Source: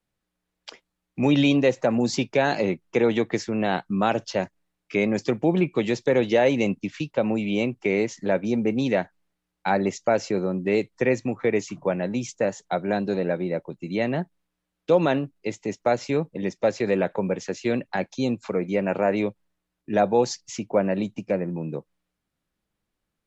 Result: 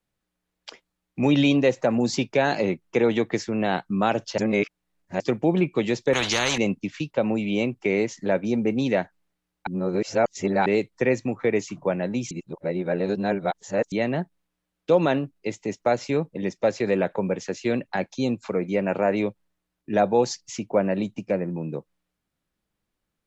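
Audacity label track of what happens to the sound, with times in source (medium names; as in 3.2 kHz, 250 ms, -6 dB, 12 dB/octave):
4.380000	5.200000	reverse
6.130000	6.580000	spectrum-flattening compressor 4:1
9.670000	10.660000	reverse
12.310000	13.920000	reverse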